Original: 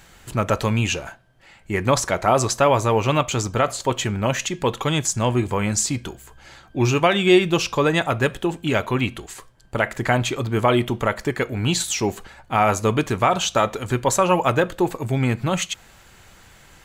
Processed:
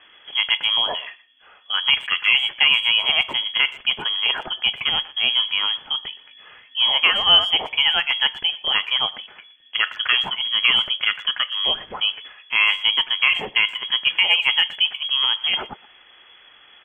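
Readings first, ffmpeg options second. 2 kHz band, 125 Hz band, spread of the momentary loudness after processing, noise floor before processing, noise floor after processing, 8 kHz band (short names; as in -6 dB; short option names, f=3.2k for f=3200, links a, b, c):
+6.0 dB, under -25 dB, 8 LU, -50 dBFS, -51 dBFS, under -30 dB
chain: -filter_complex "[0:a]lowpass=f=2.9k:t=q:w=0.5098,lowpass=f=2.9k:t=q:w=0.6013,lowpass=f=2.9k:t=q:w=0.9,lowpass=f=2.9k:t=q:w=2.563,afreqshift=-3400,asplit=2[a][b];[b]adelay=120,highpass=300,lowpass=3.4k,asoftclip=type=hard:threshold=-11.5dB,volume=-19dB[c];[a][c]amix=inputs=2:normalize=0"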